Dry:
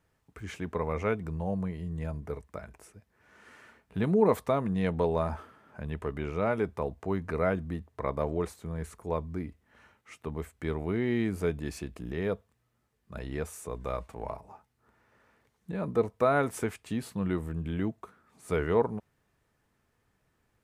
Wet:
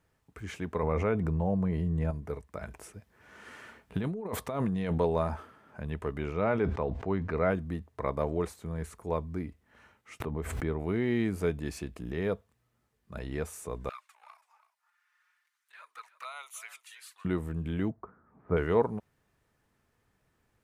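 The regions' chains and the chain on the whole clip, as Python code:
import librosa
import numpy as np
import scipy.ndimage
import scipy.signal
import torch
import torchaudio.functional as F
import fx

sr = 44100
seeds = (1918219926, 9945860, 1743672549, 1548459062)

y = fx.chain(x, sr, fx.high_shelf(hz=2200.0, db=-9.5),
    fx.env_flatten(amount_pct=70), at=(0.83, 2.11))
y = fx.chain(y, sr, fx.peak_eq(hz=3200.0, db=2.5, octaves=0.22),
    fx.over_compress(threshold_db=-32.0, ratio=-1.0), at=(2.61, 4.98))
y = fx.chain(y, sr, fx.lowpass(hz=4400.0, slope=12),
    fx.sustainer(db_per_s=62.0), at=(6.33, 7.51))
y = fx.chain(y, sr, fx.high_shelf(hz=2300.0, db=-10.0),
    fx.pre_swell(db_per_s=36.0), at=(10.2, 10.8))
y = fx.chain(y, sr, fx.highpass(hz=1300.0, slope=24),
    fx.env_flanger(rest_ms=6.1, full_db=-36.0),
    fx.echo_single(ms=330, db=-15.0), at=(13.89, 17.25))
y = fx.chain(y, sr, fx.lowpass(hz=1500.0, slope=24),
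    fx.low_shelf(hz=240.0, db=5.0), at=(17.9, 18.57))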